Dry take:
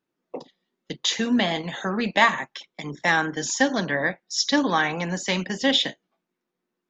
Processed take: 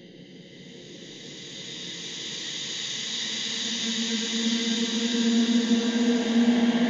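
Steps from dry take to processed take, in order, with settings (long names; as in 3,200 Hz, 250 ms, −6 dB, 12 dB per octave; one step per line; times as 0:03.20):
spectrum averaged block by block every 200 ms
extreme stretch with random phases 12×, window 0.50 s, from 0:00.75
level +1.5 dB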